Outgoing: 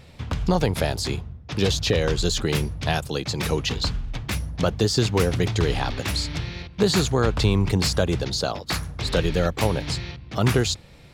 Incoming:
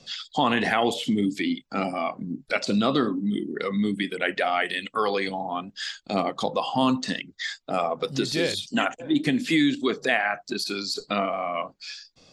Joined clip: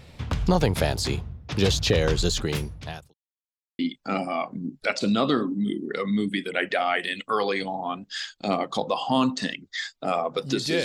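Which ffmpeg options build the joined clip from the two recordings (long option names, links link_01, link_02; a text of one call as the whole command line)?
ffmpeg -i cue0.wav -i cue1.wav -filter_complex "[0:a]apad=whole_dur=10.84,atrim=end=10.84,asplit=2[link_01][link_02];[link_01]atrim=end=3.14,asetpts=PTS-STARTPTS,afade=type=out:start_time=2.17:duration=0.97[link_03];[link_02]atrim=start=3.14:end=3.79,asetpts=PTS-STARTPTS,volume=0[link_04];[1:a]atrim=start=1.45:end=8.5,asetpts=PTS-STARTPTS,afade=type=in:duration=0.004:curve=hsin[link_05];[link_03][link_04][link_05]concat=n=3:v=0:a=1" out.wav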